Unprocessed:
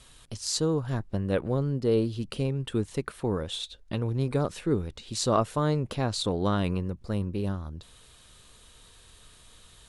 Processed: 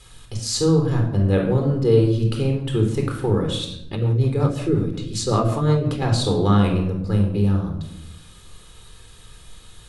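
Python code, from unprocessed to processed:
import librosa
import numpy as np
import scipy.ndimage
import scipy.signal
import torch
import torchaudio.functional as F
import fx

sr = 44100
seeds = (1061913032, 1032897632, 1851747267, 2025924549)

y = fx.room_shoebox(x, sr, seeds[0], volume_m3=2000.0, walls='furnished', distance_m=4.0)
y = fx.rotary(y, sr, hz=5.5, at=(3.95, 6.02))
y = y * librosa.db_to_amplitude(2.5)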